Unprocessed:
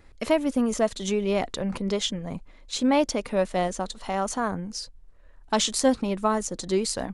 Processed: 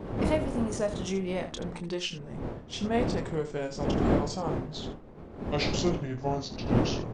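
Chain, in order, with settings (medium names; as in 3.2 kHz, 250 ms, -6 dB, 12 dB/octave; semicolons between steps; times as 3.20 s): pitch bend over the whole clip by -8.5 st starting unshifted; wind noise 380 Hz -27 dBFS; early reflections 26 ms -7.5 dB, 79 ms -12.5 dB; trim -6.5 dB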